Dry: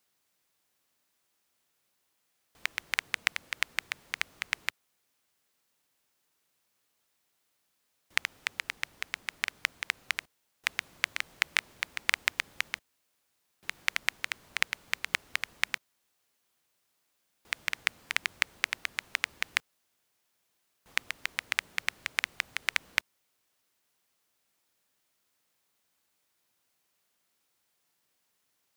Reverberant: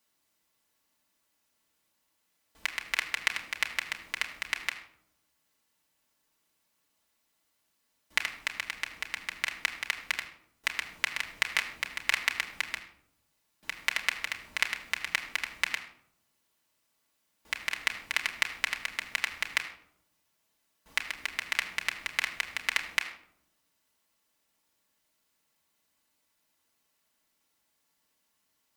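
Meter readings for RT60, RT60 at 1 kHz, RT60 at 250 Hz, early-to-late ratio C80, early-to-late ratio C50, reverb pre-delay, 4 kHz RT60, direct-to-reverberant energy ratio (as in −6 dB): 0.75 s, 0.65 s, 1.2 s, 12.0 dB, 10.5 dB, 3 ms, 0.45 s, 0.5 dB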